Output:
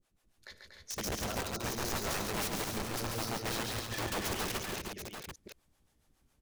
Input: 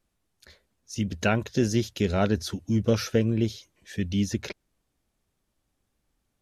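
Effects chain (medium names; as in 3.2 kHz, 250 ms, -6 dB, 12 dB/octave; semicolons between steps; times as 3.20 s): chunks repeated in reverse 165 ms, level -3.5 dB; time-frequency box 1.26–3.38 s, 1.4–3.7 kHz -25 dB; compressor with a negative ratio -27 dBFS, ratio -0.5; harmonic tremolo 7.2 Hz, depth 100%, crossover 440 Hz; integer overflow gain 31 dB; multi-tap echo 58/99/140/238/300/739 ms -17.5/-18.5/-4.5/-7/-8.5/-7.5 dB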